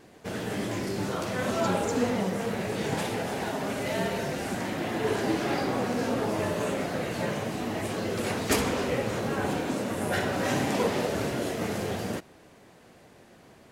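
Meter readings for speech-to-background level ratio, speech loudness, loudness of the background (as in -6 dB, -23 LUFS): -4.5 dB, -34.0 LUFS, -29.5 LUFS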